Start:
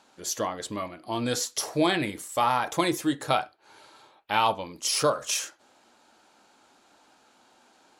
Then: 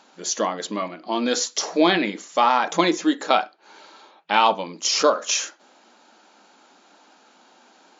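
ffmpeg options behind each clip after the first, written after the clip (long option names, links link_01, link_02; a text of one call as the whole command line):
ffmpeg -i in.wav -af "afftfilt=real='re*between(b*sr/4096,170,7300)':imag='im*between(b*sr/4096,170,7300)':win_size=4096:overlap=0.75,volume=6dB" out.wav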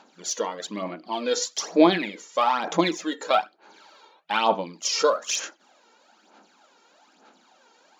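ffmpeg -i in.wav -af "aphaser=in_gain=1:out_gain=1:delay=2.2:decay=0.6:speed=1.1:type=sinusoidal,volume=-6dB" out.wav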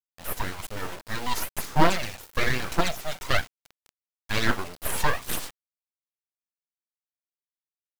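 ffmpeg -i in.wav -af "aeval=exprs='abs(val(0))':channel_layout=same,acrusher=bits=4:dc=4:mix=0:aa=0.000001" out.wav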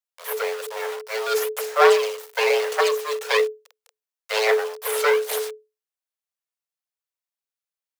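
ffmpeg -i in.wav -af "afreqshift=430,volume=2.5dB" out.wav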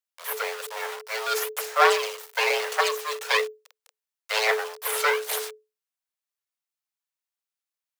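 ffmpeg -i in.wav -af "highpass=650" out.wav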